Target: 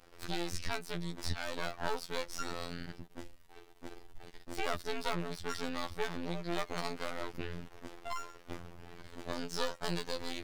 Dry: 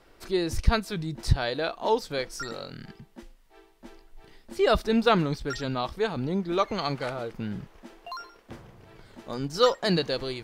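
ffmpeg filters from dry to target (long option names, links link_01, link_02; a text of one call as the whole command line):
ffmpeg -i in.wav -filter_complex "[0:a]aeval=exprs='max(val(0),0)':channel_layout=same,acrossover=split=1000|7600[link_01][link_02][link_03];[link_01]acompressor=threshold=-39dB:ratio=4[link_04];[link_02]acompressor=threshold=-43dB:ratio=4[link_05];[link_03]acompressor=threshold=-57dB:ratio=4[link_06];[link_04][link_05][link_06]amix=inputs=3:normalize=0,afftfilt=real='hypot(re,im)*cos(PI*b)':imag='0':win_size=2048:overlap=0.75,volume=7dB" out.wav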